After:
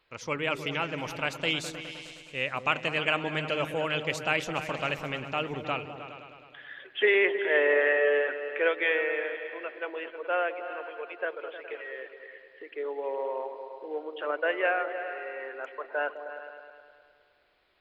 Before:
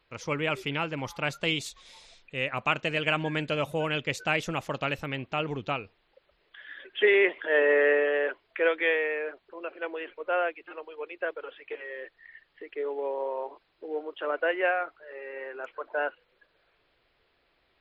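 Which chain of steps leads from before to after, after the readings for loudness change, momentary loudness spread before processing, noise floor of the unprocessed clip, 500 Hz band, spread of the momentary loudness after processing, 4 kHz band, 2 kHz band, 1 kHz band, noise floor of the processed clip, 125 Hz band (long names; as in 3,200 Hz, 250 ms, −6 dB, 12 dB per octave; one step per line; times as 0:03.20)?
−0.5 dB, 18 LU, −71 dBFS, −1.0 dB, 18 LU, +0.5 dB, +0.5 dB, 0.0 dB, −60 dBFS, −3.5 dB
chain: low-shelf EQ 300 Hz −6 dB
echo whose low-pass opens from repeat to repeat 104 ms, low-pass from 200 Hz, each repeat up 2 octaves, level −6 dB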